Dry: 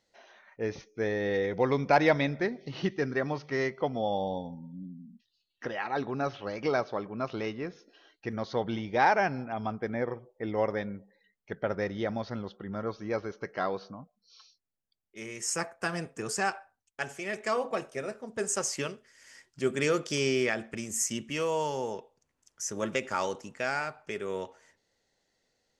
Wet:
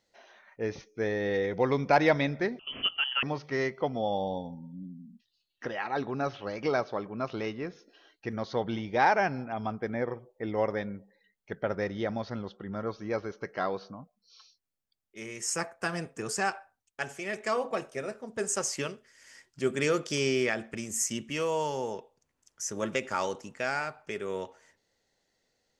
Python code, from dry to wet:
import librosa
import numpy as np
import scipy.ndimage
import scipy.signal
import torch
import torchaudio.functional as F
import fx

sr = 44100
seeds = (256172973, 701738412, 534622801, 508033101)

y = fx.freq_invert(x, sr, carrier_hz=3200, at=(2.59, 3.23))
y = fx.steep_lowpass(y, sr, hz=9400.0, slope=36, at=(11.82, 12.76))